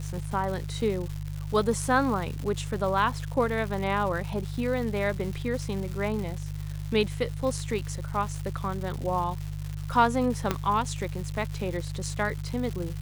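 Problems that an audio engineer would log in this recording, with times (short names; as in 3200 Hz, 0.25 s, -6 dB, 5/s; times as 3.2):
crackle 330/s -34 dBFS
hum 50 Hz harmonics 3 -34 dBFS
10.51 pop -10 dBFS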